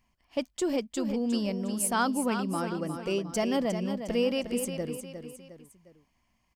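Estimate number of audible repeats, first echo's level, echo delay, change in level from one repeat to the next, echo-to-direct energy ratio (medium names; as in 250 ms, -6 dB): 3, -8.5 dB, 357 ms, -7.0 dB, -7.5 dB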